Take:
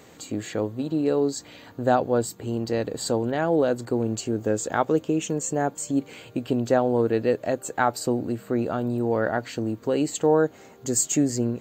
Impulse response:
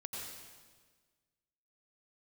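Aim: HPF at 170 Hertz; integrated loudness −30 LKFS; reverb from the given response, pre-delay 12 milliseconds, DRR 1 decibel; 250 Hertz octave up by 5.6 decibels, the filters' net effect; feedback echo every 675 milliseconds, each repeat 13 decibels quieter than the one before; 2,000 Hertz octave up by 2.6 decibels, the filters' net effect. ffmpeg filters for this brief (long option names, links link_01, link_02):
-filter_complex "[0:a]highpass=170,equalizer=frequency=250:width_type=o:gain=7.5,equalizer=frequency=2000:width_type=o:gain=3.5,aecho=1:1:675|1350|2025:0.224|0.0493|0.0108,asplit=2[link_01][link_02];[1:a]atrim=start_sample=2205,adelay=12[link_03];[link_02][link_03]afir=irnorm=-1:irlink=0,volume=0dB[link_04];[link_01][link_04]amix=inputs=2:normalize=0,volume=-11dB"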